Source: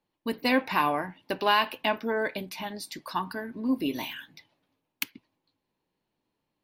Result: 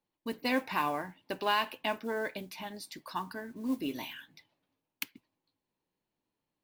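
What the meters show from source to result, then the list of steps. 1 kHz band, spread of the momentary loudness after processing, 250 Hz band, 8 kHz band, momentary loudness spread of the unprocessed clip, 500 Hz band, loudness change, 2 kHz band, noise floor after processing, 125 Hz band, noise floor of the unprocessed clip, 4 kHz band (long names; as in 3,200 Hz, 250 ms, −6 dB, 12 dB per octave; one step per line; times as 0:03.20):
−6.0 dB, 12 LU, −6.0 dB, −5.0 dB, 12 LU, −6.0 dB, −6.0 dB, −6.0 dB, below −85 dBFS, −6.0 dB, −83 dBFS, −6.0 dB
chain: noise that follows the level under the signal 25 dB
level −6 dB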